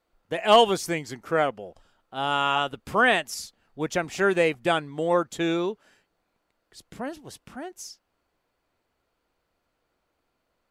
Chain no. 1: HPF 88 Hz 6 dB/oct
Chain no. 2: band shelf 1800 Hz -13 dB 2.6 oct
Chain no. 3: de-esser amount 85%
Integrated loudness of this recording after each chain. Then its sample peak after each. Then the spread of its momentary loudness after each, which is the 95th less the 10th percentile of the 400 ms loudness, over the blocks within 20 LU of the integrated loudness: -24.5, -28.0, -26.0 LUFS; -6.0, -9.5, -10.0 dBFS; 21, 19, 21 LU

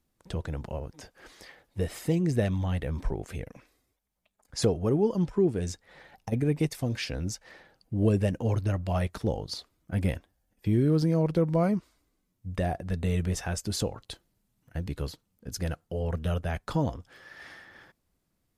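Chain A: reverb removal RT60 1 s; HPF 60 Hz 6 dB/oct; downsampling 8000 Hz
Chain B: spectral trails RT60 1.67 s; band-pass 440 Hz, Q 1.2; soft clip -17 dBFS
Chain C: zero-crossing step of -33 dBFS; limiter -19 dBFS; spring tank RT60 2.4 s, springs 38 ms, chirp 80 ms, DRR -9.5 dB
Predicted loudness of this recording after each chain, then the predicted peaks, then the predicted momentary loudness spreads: -31.5, -32.0, -20.5 LUFS; -14.0, -18.0, -5.0 dBFS; 17, 17, 11 LU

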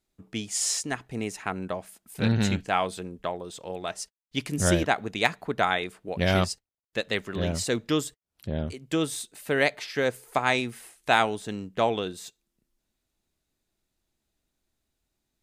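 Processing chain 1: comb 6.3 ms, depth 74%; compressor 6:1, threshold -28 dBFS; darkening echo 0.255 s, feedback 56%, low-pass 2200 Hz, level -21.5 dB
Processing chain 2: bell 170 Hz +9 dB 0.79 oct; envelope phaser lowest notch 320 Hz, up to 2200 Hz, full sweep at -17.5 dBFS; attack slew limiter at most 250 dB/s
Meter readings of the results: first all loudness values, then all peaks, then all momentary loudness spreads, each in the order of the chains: -33.5, -28.5 LUFS; -14.5, -8.0 dBFS; 6, 18 LU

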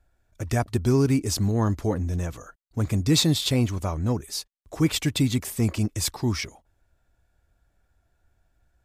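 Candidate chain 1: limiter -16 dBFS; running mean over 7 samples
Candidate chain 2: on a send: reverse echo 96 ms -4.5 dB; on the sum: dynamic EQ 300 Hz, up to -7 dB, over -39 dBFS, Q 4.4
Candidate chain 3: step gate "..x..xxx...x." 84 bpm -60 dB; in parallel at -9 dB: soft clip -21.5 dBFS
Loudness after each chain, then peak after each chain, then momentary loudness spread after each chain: -27.5, -24.5, -25.5 LUFS; -16.0, -7.5, -10.0 dBFS; 11, 11, 14 LU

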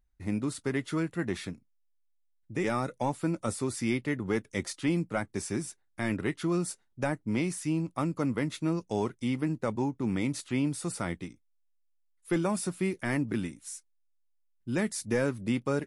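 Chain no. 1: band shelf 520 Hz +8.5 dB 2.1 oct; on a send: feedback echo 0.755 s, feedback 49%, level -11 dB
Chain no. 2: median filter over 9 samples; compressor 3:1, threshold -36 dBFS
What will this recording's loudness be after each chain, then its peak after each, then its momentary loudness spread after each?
-26.0, -39.5 LUFS; -10.5, -21.0 dBFS; 12, 5 LU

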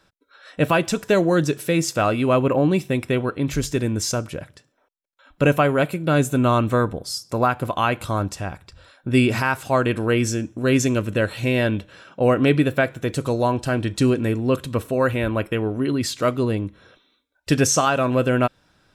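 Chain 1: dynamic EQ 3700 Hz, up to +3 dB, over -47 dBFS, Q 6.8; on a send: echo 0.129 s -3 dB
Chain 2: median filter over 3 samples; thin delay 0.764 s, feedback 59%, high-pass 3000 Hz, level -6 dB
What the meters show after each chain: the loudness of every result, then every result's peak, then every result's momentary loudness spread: -19.5, -21.0 LUFS; -2.5, -5.5 dBFS; 8, 13 LU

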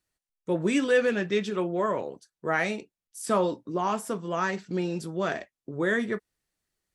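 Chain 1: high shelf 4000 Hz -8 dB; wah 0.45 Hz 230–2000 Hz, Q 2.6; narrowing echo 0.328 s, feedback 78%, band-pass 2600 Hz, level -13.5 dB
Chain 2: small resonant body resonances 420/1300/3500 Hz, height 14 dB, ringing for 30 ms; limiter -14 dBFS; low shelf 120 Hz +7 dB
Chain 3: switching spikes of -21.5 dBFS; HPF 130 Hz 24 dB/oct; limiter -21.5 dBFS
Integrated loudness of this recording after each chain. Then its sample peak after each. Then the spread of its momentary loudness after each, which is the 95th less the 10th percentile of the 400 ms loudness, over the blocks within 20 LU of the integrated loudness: -35.5, -23.5, -29.5 LUFS; -18.0, -12.5, -21.5 dBFS; 15, 9, 7 LU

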